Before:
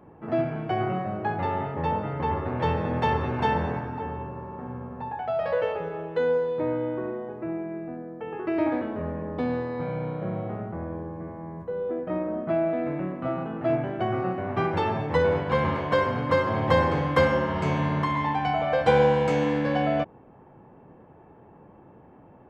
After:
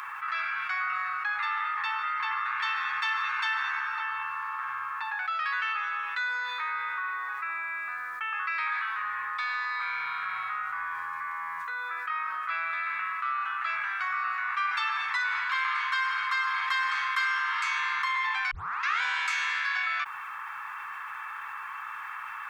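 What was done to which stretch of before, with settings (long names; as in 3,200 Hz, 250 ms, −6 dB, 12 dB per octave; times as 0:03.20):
0:18.51: tape start 0.50 s
whole clip: elliptic high-pass filter 1,200 Hz, stop band 50 dB; notch filter 3,000 Hz, Q 11; envelope flattener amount 70%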